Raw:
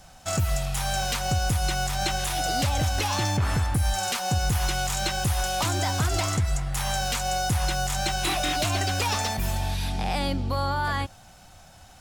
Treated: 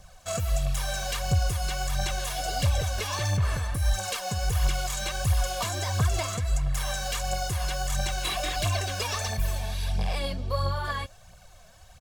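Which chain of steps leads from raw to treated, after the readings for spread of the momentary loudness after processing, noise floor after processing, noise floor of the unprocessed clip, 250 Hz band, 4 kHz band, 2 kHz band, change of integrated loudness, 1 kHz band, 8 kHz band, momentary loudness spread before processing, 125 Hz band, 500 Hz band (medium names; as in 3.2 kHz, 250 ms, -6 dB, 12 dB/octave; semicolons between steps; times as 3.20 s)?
4 LU, -52 dBFS, -50 dBFS, -7.5 dB, -4.0 dB, -4.0 dB, -2.5 dB, -6.0 dB, -3.5 dB, 3 LU, -1.5 dB, -1.5 dB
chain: comb 1.8 ms, depth 61%; phaser 1.5 Hz, delay 4.9 ms, feedback 51%; trim -6 dB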